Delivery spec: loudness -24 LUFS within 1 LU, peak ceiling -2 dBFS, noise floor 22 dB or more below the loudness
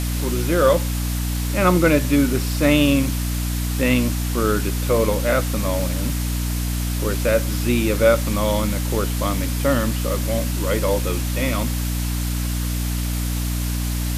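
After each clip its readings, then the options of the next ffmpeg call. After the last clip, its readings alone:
hum 60 Hz; harmonics up to 300 Hz; hum level -21 dBFS; noise floor -23 dBFS; noise floor target -43 dBFS; loudness -21.0 LUFS; peak -3.0 dBFS; loudness target -24.0 LUFS
-> -af "bandreject=f=60:t=h:w=6,bandreject=f=120:t=h:w=6,bandreject=f=180:t=h:w=6,bandreject=f=240:t=h:w=6,bandreject=f=300:t=h:w=6"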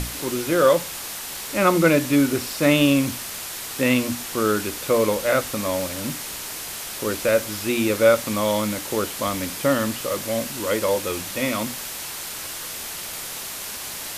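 hum none; noise floor -33 dBFS; noise floor target -45 dBFS
-> -af "afftdn=nr=12:nf=-33"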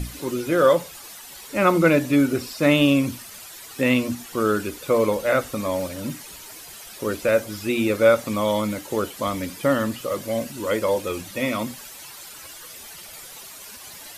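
noise floor -41 dBFS; noise floor target -45 dBFS
-> -af "afftdn=nr=6:nf=-41"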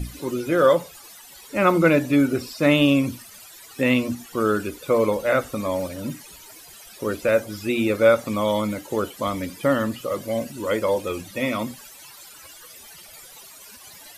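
noise floor -45 dBFS; loudness -22.5 LUFS; peak -4.5 dBFS; loudness target -24.0 LUFS
-> -af "volume=-1.5dB"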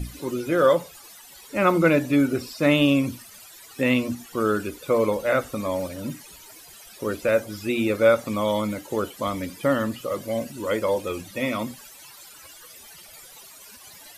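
loudness -24.0 LUFS; peak -6.0 dBFS; noise floor -47 dBFS

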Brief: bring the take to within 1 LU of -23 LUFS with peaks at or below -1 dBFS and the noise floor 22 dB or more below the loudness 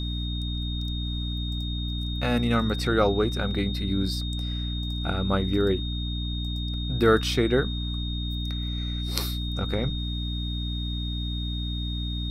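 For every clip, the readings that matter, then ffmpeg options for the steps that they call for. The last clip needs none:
hum 60 Hz; harmonics up to 300 Hz; hum level -28 dBFS; steady tone 3700 Hz; tone level -35 dBFS; loudness -27.5 LUFS; peak -3.5 dBFS; loudness target -23.0 LUFS
-> -af "bandreject=f=60:t=h:w=6,bandreject=f=120:t=h:w=6,bandreject=f=180:t=h:w=6,bandreject=f=240:t=h:w=6,bandreject=f=300:t=h:w=6"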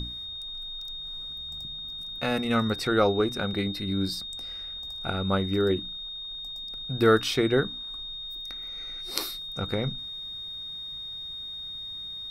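hum none; steady tone 3700 Hz; tone level -35 dBFS
-> -af "bandreject=f=3.7k:w=30"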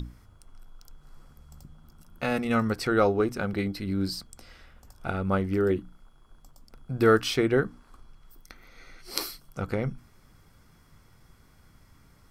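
steady tone none; loudness -27.5 LUFS; peak -4.0 dBFS; loudness target -23.0 LUFS
-> -af "volume=4.5dB,alimiter=limit=-1dB:level=0:latency=1"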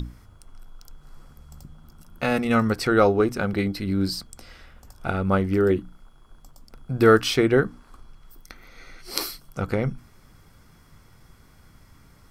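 loudness -23.0 LUFS; peak -1.0 dBFS; noise floor -54 dBFS

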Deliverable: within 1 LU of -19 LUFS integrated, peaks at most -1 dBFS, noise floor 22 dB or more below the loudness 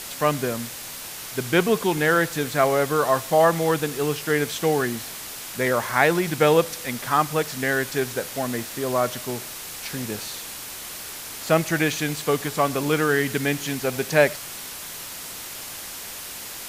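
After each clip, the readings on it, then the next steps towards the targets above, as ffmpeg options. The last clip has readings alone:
noise floor -36 dBFS; noise floor target -46 dBFS; loudness -24.0 LUFS; peak -2.5 dBFS; loudness target -19.0 LUFS
-> -af "afftdn=nr=10:nf=-36"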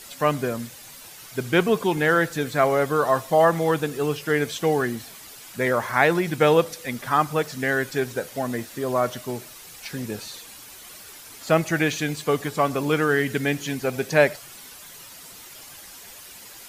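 noise floor -44 dBFS; noise floor target -45 dBFS
-> -af "afftdn=nr=6:nf=-44"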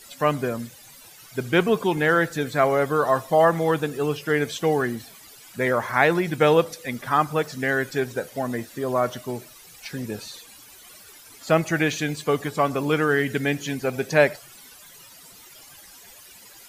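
noise floor -48 dBFS; loudness -23.0 LUFS; peak -2.5 dBFS; loudness target -19.0 LUFS
-> -af "volume=4dB,alimiter=limit=-1dB:level=0:latency=1"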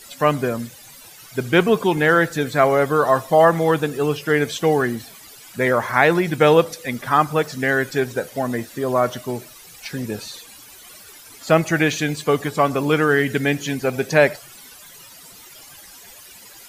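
loudness -19.0 LUFS; peak -1.0 dBFS; noise floor -44 dBFS

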